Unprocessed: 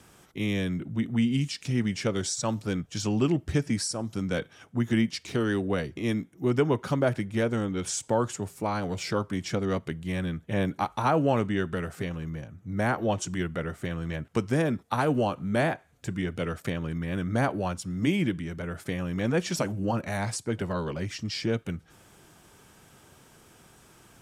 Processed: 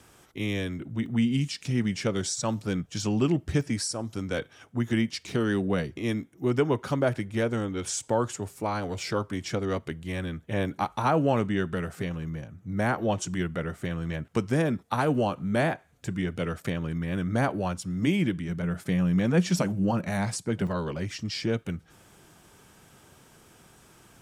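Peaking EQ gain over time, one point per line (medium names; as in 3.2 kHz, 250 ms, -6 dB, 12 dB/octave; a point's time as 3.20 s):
peaking EQ 180 Hz 0.39 oct
-7 dB
from 1.06 s +1.5 dB
from 3.61 s -6.5 dB
from 5.21 s +4.5 dB
from 5.90 s -5 dB
from 10.74 s +2 dB
from 18.49 s +9.5 dB
from 20.67 s +1 dB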